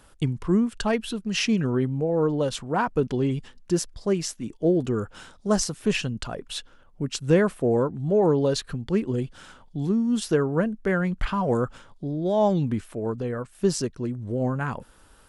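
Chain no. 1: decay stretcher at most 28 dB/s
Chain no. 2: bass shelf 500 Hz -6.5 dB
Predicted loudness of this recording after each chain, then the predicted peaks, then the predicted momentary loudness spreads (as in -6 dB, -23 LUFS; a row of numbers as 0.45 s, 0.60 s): -23.5 LUFS, -29.5 LUFS; -3.0 dBFS, -9.5 dBFS; 10 LU, 10 LU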